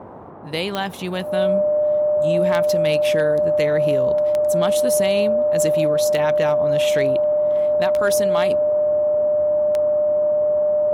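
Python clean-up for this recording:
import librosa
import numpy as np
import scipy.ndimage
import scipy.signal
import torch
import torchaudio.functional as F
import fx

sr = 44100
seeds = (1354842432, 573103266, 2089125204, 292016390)

y = fx.fix_declip(x, sr, threshold_db=-10.5)
y = fx.fix_declick_ar(y, sr, threshold=10.0)
y = fx.notch(y, sr, hz=600.0, q=30.0)
y = fx.noise_reduce(y, sr, print_start_s=0.0, print_end_s=0.5, reduce_db=30.0)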